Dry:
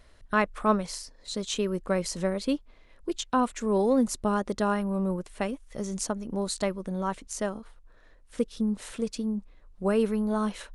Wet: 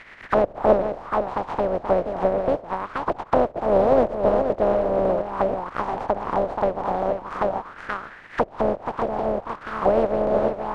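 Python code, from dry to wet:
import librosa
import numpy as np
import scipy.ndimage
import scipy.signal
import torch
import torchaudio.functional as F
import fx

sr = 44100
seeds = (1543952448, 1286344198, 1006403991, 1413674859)

p1 = fx.spec_flatten(x, sr, power=0.15)
p2 = p1 + fx.echo_single(p1, sr, ms=478, db=-7.5, dry=0)
p3 = fx.envelope_lowpass(p2, sr, base_hz=600.0, top_hz=2100.0, q=4.0, full_db=-25.5, direction='down')
y = p3 * 10.0 ** (8.5 / 20.0)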